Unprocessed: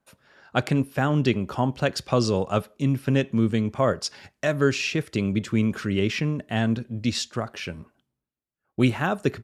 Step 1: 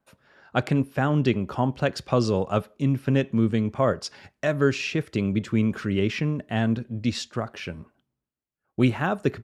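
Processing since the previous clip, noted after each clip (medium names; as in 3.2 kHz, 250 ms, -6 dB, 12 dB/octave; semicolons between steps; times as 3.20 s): treble shelf 3.8 kHz -7 dB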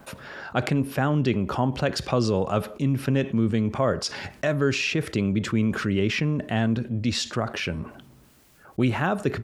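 level flattener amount 50%; trim -3 dB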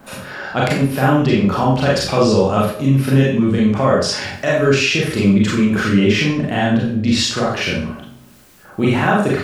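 hum notches 60/120 Hz; Schroeder reverb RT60 0.47 s, combs from 30 ms, DRR -5 dB; trim +3.5 dB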